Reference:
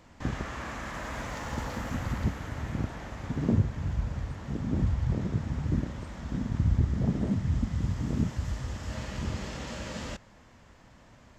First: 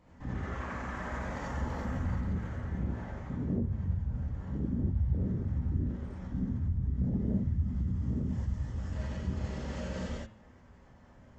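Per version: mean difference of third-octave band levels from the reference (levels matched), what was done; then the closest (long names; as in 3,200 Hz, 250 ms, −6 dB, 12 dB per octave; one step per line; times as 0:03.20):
6.5 dB: spectral envelope exaggerated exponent 1.5
hum removal 110.1 Hz, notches 37
brickwall limiter −23 dBFS, peak gain reduction 8.5 dB
reverb whose tail is shaped and stops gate 110 ms rising, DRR −5.5 dB
level −6.5 dB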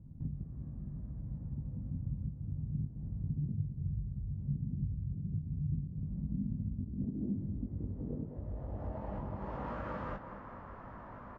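14.5 dB: downward compressor 16 to 1, threshold −41 dBFS, peak gain reduction 23.5 dB
low-pass filter sweep 150 Hz → 1,200 Hz, 0:05.90–0:09.84
double-tracking delay 20 ms −6 dB
tape delay 206 ms, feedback 77%, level −9.5 dB, low-pass 2,500 Hz
level +3.5 dB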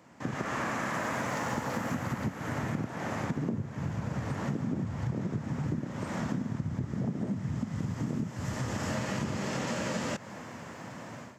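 5.0 dB: automatic gain control gain up to 14.5 dB
high-pass filter 120 Hz 24 dB per octave
parametric band 3,700 Hz −6 dB 1 octave
downward compressor 12 to 1, threshold −29 dBFS, peak gain reduction 19 dB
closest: third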